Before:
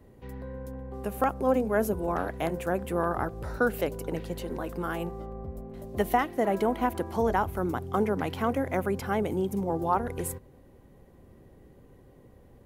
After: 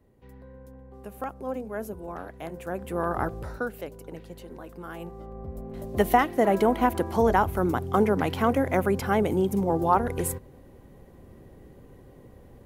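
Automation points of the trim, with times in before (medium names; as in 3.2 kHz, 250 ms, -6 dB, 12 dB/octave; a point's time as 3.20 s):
2.42 s -8 dB
3.32 s +3.5 dB
3.72 s -8 dB
4.82 s -8 dB
5.77 s +4.5 dB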